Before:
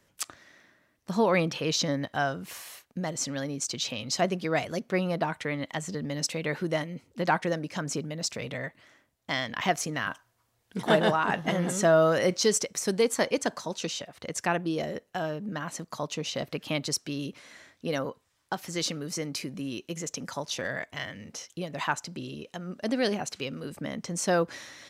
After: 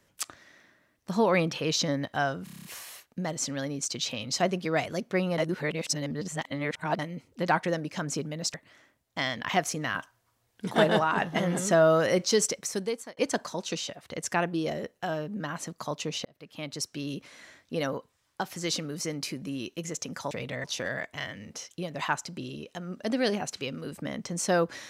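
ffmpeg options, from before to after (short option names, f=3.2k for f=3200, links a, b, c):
-filter_complex "[0:a]asplit=15[a][b][c][d][e][f][g][h][i][j][k][l][m][n][o];[a]atrim=end=2.472[p];[b]atrim=start=2.438:end=2.472[q];[c]atrim=start=2.438:end=2.472[r];[d]atrim=start=2.438:end=2.472[s];[e]atrim=start=2.438:end=2.472[t];[f]atrim=start=2.438:end=2.472[u];[g]atrim=start=2.438:end=2.472[v];[h]atrim=start=2.438:end=5.172[w];[i]atrim=start=5.168:end=6.782,asetpts=PTS-STARTPTS,areverse[x];[j]atrim=start=6.778:end=8.332[y];[k]atrim=start=8.658:end=13.29,asetpts=PTS-STARTPTS,afade=t=out:st=4.022:d=0.61[z];[l]atrim=start=13.29:end=16.37,asetpts=PTS-STARTPTS,afade=t=in:d=0.004:c=hsin,afade=t=out:st=3.076:d=0.004:c=hsin[aa];[m]atrim=start=16.37:end=20.432,asetpts=PTS-STARTPTS,afade=t=in:d=0.92[ab];[n]atrim=start=8.328:end=8.662[ac];[o]atrim=start=20.428[ad];[p][q]acrossfade=d=0.004:c1=hsin:c2=hsin[ae];[ae][r]acrossfade=d=0.004:c1=hsin:c2=hsin[af];[af][s]acrossfade=d=0.004:c1=hsin:c2=hsin[ag];[ag][t]acrossfade=d=0.004:c1=hsin:c2=hsin[ah];[ah][u]acrossfade=d=0.004:c1=hsin:c2=hsin[ai];[ai][v]acrossfade=d=0.004:c1=hsin:c2=hsin[aj];[aj][w]acrossfade=d=0.004:c1=hsin:c2=hsin[ak];[ak][x]acrossfade=d=0.004:c1=hsin:c2=hsin[al];[al][y]acrossfade=d=0.004:c1=hsin:c2=hsin[am];[z][aa][ab]concat=n=3:v=0:a=1[an];[am][an]acrossfade=d=0.004:c1=hsin:c2=hsin[ao];[ao][ac]acrossfade=d=0.004:c1=hsin:c2=hsin[ap];[ap][ad]acrossfade=d=0.004:c1=hsin:c2=hsin"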